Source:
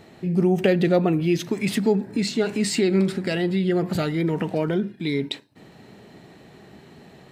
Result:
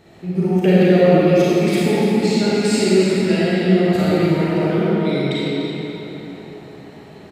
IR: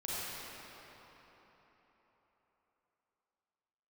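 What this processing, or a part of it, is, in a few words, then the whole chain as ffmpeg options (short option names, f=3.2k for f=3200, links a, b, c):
cave: -filter_complex "[0:a]aecho=1:1:295:0.266[a];[1:a]atrim=start_sample=2205[b];[a][b]afir=irnorm=-1:irlink=0,volume=2dB"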